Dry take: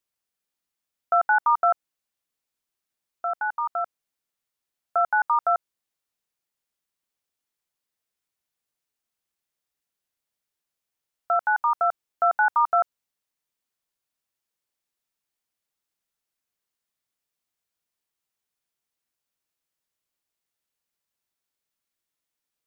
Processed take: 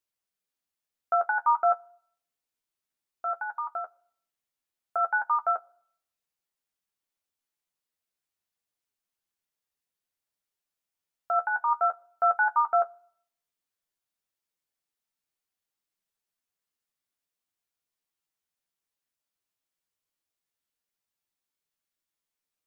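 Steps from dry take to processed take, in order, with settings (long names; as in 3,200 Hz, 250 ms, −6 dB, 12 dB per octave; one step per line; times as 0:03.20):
flanger 0.57 Hz, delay 9.7 ms, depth 3.1 ms, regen +34%
on a send: convolution reverb RT60 0.65 s, pre-delay 3 ms, DRR 22.5 dB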